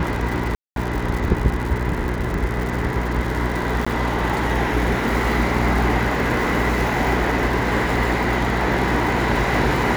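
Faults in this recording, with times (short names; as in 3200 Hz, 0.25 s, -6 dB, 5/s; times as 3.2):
crackle 170/s -25 dBFS
hum 60 Hz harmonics 7 -25 dBFS
0.55–0.76 gap 0.212 s
3.85–3.87 gap 15 ms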